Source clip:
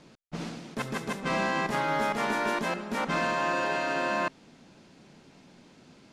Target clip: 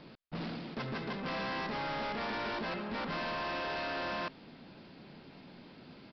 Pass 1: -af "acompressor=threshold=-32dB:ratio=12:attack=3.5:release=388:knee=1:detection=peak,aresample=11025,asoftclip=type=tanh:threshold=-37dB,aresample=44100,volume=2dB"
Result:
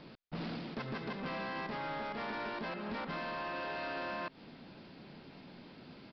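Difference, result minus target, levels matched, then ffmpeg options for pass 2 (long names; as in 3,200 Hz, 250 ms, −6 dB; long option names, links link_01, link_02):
downward compressor: peak gain reduction +11.5 dB
-af "aresample=11025,asoftclip=type=tanh:threshold=-37dB,aresample=44100,volume=2dB"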